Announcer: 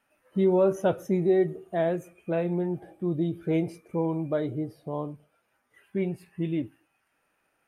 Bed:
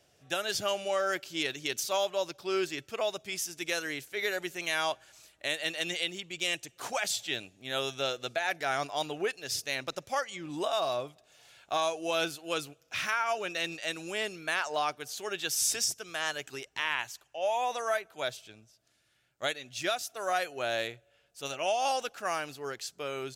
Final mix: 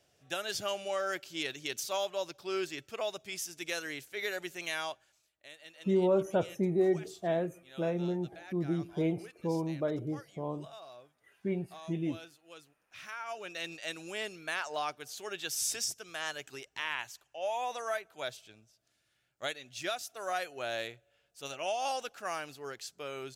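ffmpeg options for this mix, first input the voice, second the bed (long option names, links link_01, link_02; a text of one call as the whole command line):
ffmpeg -i stem1.wav -i stem2.wav -filter_complex "[0:a]adelay=5500,volume=-5dB[link_01];[1:a]volume=11dB,afade=type=out:start_time=4.66:duration=0.56:silence=0.16788,afade=type=in:start_time=12.88:duration=0.95:silence=0.177828[link_02];[link_01][link_02]amix=inputs=2:normalize=0" out.wav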